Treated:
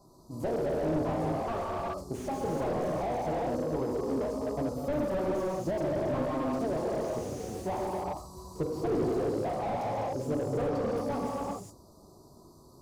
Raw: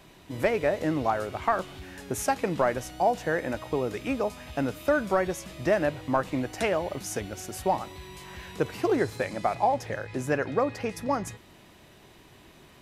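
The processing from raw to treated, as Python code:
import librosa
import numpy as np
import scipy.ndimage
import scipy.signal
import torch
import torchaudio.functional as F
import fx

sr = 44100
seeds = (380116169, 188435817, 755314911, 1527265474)

y = fx.spec_quant(x, sr, step_db=15)
y = scipy.signal.sosfilt(scipy.signal.cheby1(4, 1.0, [1200.0, 4400.0], 'bandstop', fs=sr, output='sos'), y)
y = fx.rev_gated(y, sr, seeds[0], gate_ms=440, shape='flat', drr_db=-3.5)
y = fx.slew_limit(y, sr, full_power_hz=37.0)
y = y * 10.0 ** (-5.0 / 20.0)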